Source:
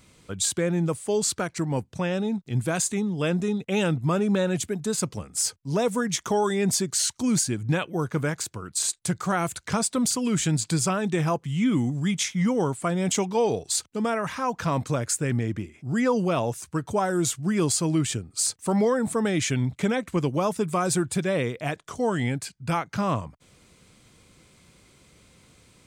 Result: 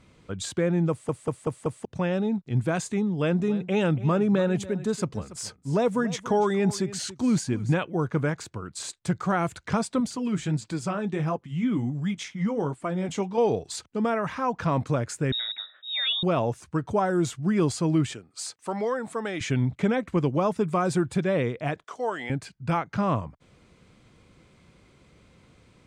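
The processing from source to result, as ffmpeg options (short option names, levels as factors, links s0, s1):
-filter_complex "[0:a]asettb=1/sr,asplit=3[s0][s1][s2];[s0]atrim=end=3.044[s3];[s1]atrim=start=3.04:end=7.74,asetpts=PTS-STARTPTS,afade=t=in:d=0.004:c=qsin,afade=t=out:st=4.696:d=0.004:c=qsin,aecho=1:1:284:0.15,atrim=end_sample=207270[s4];[s2]atrim=start=7.736[s5];[s3][s4]acrossfade=d=0.004:c1=hsin:c2=qsin[s6];[s6][s5]acrossfade=d=0.004:c1=qsin:c2=hsin,asettb=1/sr,asplit=3[s7][s8][s9];[s7]atrim=end=10.004[s10];[s8]atrim=start=10:end=13.38,asetpts=PTS-STARTPTS,afade=t=in:d=0.004:c=qsin,afade=t=out:st=3.376:d=0.004:c=qsin,flanger=delay=3.2:depth=7.1:regen=-46:speed=1.4:shape=sinusoidal[s11];[s9]atrim=start=13.376[s12];[s10][s11]acrossfade=d=0.004:c1=hsin:c2=qsin[s13];[s13][s12]acrossfade=d=0.004:c1=qsin:c2=hsin,asettb=1/sr,asplit=3[s14][s15][s16];[s14]atrim=end=15.324[s17];[s15]atrim=start=15.32:end=16.23,asetpts=PTS-STARTPTS,afade=t=in:d=0.004:c=qsin,afade=t=out:st=0.906:d=0.004:c=qsin,lowpass=f=3300:t=q:w=0.5098,lowpass=f=3300:t=q:w=0.6013,lowpass=f=3300:t=q:w=0.9,lowpass=f=3300:t=q:w=2.563,afreqshift=-3900[s18];[s16]atrim=start=16.226[s19];[s17][s18]acrossfade=d=0.004:c1=hsin:c2=qsin[s20];[s20][s19]acrossfade=d=0.004:c1=qsin:c2=hsin,asettb=1/sr,asplit=3[s21][s22][s23];[s21]atrim=end=18.134[s24];[s22]atrim=start=18.13:end=19.41,asetpts=PTS-STARTPTS,afade=t=in:d=0.004:c=qsin,afade=t=out:st=1.276:d=0.004:c=qsin,highpass=f=760:p=1[s25];[s23]atrim=start=19.406[s26];[s24][s25]acrossfade=d=0.004:c1=hsin:c2=qsin[s27];[s27][s26]acrossfade=d=0.004:c1=qsin:c2=hsin,asettb=1/sr,asplit=3[s28][s29][s30];[s28]atrim=end=21.844[s31];[s29]atrim=start=21.84:end=22.3,asetpts=PTS-STARTPTS,afade=t=in:d=0.004:c=qsin,afade=t=out:st=0.456:d=0.004:c=qsin,highpass=540[s32];[s30]atrim=start=22.296[s33];[s31][s32]acrossfade=d=0.004:c1=hsin:c2=qsin[s34];[s34][s33]acrossfade=d=0.004:c1=qsin:c2=hsin,asplit=6[s35][s36][s37][s38][s39][s40];[s35]atrim=end=1.092[s41];[s36]atrim=start=0.898:end=1.092[s42];[s37]atrim=start=0.898:end=1.092[s43];[s38]atrim=start=0.898:end=1.092[s44];[s39]atrim=start=0.898:end=1.092[s45];[s40]atrim=start=1.848[s46];[s41][s42]acrossfade=d=0.004:c1=hsin:c2=hsin[s47];[s47][s43]acrossfade=d=0.004:c1=hsin:c2=hsin[s48];[s48][s44]acrossfade=d=0.004:c1=hsin:c2=hsin[s49];[s49][s45]acrossfade=d=0.004:c1=hsin:c2=hsin[s50];[s50][s46]acrossfade=d=0.004:c1=hsin:c2=hsin,aemphasis=mode=reproduction:type=75fm"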